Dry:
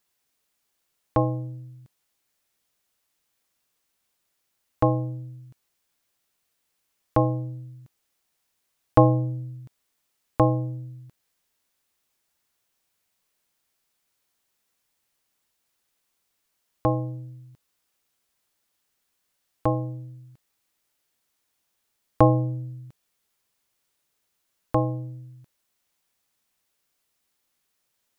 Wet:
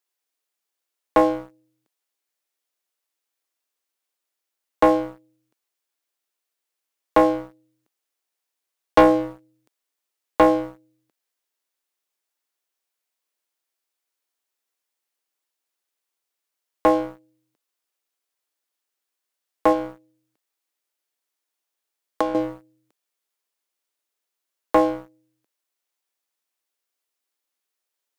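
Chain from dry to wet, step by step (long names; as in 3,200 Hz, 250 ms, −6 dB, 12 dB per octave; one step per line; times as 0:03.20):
high-pass filter 290 Hz 24 dB per octave
0:19.72–0:22.35: downward compressor 16 to 1, threshold −28 dBFS, peak gain reduction 16 dB
leveller curve on the samples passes 3
level −1.5 dB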